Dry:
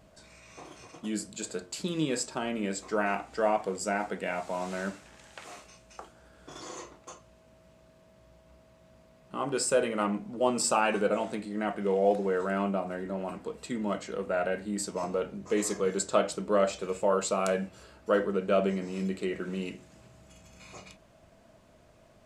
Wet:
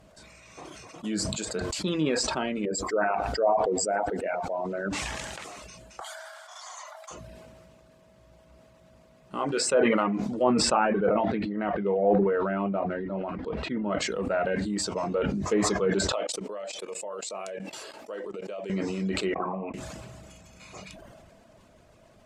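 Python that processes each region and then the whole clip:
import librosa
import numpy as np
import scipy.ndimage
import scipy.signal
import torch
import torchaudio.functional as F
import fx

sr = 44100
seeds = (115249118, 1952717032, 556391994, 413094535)

y = fx.chain(x, sr, fx.envelope_sharpen(power=2.0),
    fx.brickwall_lowpass(high_hz=11000.0),
    fx.echo_crushed(ms=117, feedback_pct=35, bits=9, wet_db=-14.0), at=(2.65, 4.93))
y = fx.chain(y, sr, fx.steep_highpass(hz=630.0, slope=72),
    fx.notch(hz=2600.0, q=5.8), at=(6.0, 7.11))
y = fx.chain(y, sr, fx.highpass(hz=220.0, slope=6),
    fx.notch(hz=5200.0, q=27.0), at=(9.39, 10.32))
y = fx.chain(y, sr, fx.air_absorb(metres=310.0),
    fx.sustainer(db_per_s=60.0), at=(10.85, 13.99))
y = fx.chain(y, sr, fx.highpass(hz=380.0, slope=12),
    fx.peak_eq(hz=1400.0, db=-8.0, octaves=0.37),
    fx.level_steps(step_db=19), at=(16.12, 18.7))
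y = fx.chain(y, sr, fx.formant_cascade(vowel='a'),
    fx.notch(hz=1400.0, q=19.0), at=(19.34, 19.74))
y = fx.dereverb_blind(y, sr, rt60_s=0.51)
y = fx.env_lowpass_down(y, sr, base_hz=1600.0, full_db=-23.0)
y = fx.sustainer(y, sr, db_per_s=22.0)
y = F.gain(torch.from_numpy(y), 2.5).numpy()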